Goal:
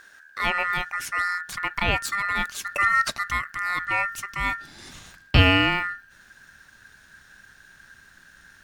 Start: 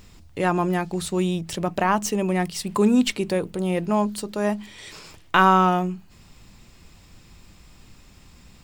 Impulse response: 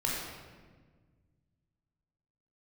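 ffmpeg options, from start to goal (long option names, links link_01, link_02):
-af "aeval=exprs='val(0)*sin(2*PI*1600*n/s)':channel_layout=same,asubboost=boost=6:cutoff=190"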